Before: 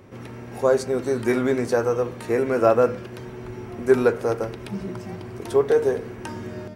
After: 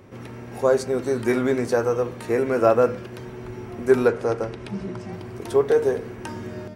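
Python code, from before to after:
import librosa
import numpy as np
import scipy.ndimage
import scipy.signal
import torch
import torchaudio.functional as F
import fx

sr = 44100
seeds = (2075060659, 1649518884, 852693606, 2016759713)

y = fx.bessel_lowpass(x, sr, hz=7900.0, order=4, at=(4.08, 5.13))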